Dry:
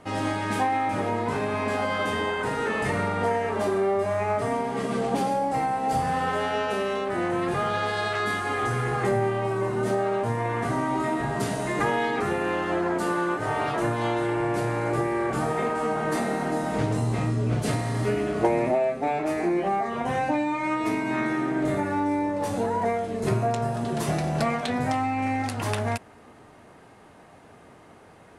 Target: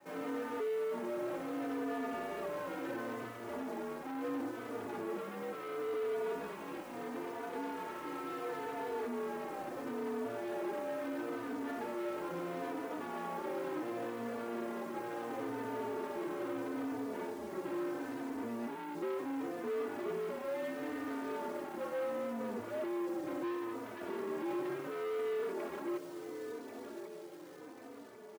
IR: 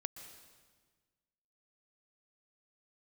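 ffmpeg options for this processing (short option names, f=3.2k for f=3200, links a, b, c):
-filter_complex "[0:a]acrossover=split=600|1500[a][b][c];[b]asoftclip=type=hard:threshold=-32dB[d];[a][d][c]amix=inputs=3:normalize=0,highpass=f=530:t=q:w=0.5412,highpass=f=530:t=q:w=1.307,lowpass=f=2.8k:t=q:w=0.5176,lowpass=f=2.8k:t=q:w=0.7071,lowpass=f=2.8k:t=q:w=1.932,afreqshift=-350,alimiter=level_in=2dB:limit=-24dB:level=0:latency=1:release=11,volume=-2dB,tiltshelf=f=1.1k:g=5.5,aecho=1:1:1094|2188|3282|4376|5470|6564:0.251|0.141|0.0788|0.0441|0.0247|0.0138,adynamicequalizer=threshold=0.00708:dfrequency=330:dqfactor=1.1:tfrequency=330:tqfactor=1.1:attack=5:release=100:ratio=0.375:range=3.5:mode=boostabove:tftype=bell,acrusher=bits=3:mode=log:mix=0:aa=0.000001,asoftclip=type=tanh:threshold=-29.5dB,highpass=240,asplit=2[e][f];[f]adelay=3.3,afreqshift=-0.73[g];[e][g]amix=inputs=2:normalize=1,volume=-3dB"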